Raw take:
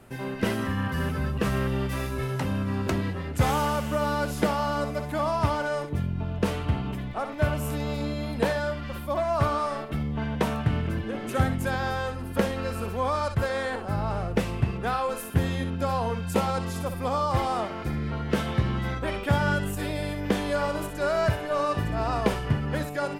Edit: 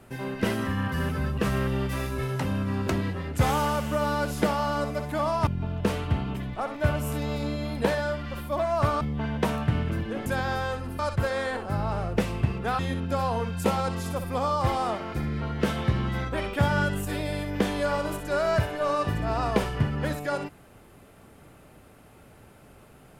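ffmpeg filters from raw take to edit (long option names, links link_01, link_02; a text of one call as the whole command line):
ffmpeg -i in.wav -filter_complex "[0:a]asplit=6[link_01][link_02][link_03][link_04][link_05][link_06];[link_01]atrim=end=5.472[link_07];[link_02]atrim=start=6.048:end=9.592[link_08];[link_03]atrim=start=9.988:end=11.242[link_09];[link_04]atrim=start=11.608:end=12.342[link_10];[link_05]atrim=start=13.178:end=14.982[link_11];[link_06]atrim=start=15.488[link_12];[link_07][link_08]acrossfade=duration=0.004:curve1=hsin:curve2=hsin[link_13];[link_13][link_09]acrossfade=duration=0.004:curve1=hsin:curve2=hsin[link_14];[link_14][link_10]acrossfade=duration=0.004:curve1=hsin:curve2=hsin[link_15];[link_15][link_11]acrossfade=duration=0.004:curve1=hsin:curve2=hsin[link_16];[link_16][link_12]acrossfade=duration=0.004:curve1=hsin:curve2=hsin" out.wav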